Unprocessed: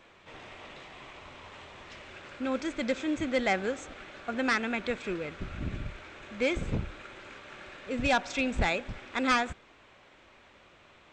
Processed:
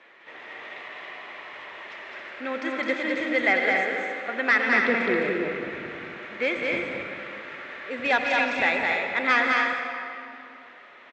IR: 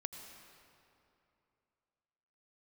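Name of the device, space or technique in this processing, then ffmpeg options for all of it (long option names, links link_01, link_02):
station announcement: -filter_complex "[0:a]asettb=1/sr,asplit=3[link_01][link_02][link_03];[link_01]atrim=end=4.684[link_04];[link_02]atrim=start=4.68:end=5.4,asetpts=PTS-STARTPTS,afade=type=in:duration=0.004:curve=qsin,afade=type=out:start_time=0.716:duration=0.004:curve=qsin,lowshelf=frequency=470:gain=11.5[link_05];[link_03]atrim=start=5.396[link_06];[link_04][link_05]acrossfade=duration=0.004:curve1=hsin:curve2=qsin[link_07];[link_07][link_06]acrossfade=duration=0.004:curve1=qsin:curve2=hsin,highpass=340,lowpass=3900,equalizer=frequency=1900:width_type=o:width=0.36:gain=10,aecho=1:1:209.9|274.1:0.708|0.501[link_08];[1:a]atrim=start_sample=2205[link_09];[link_08][link_09]afir=irnorm=-1:irlink=0,volume=5dB"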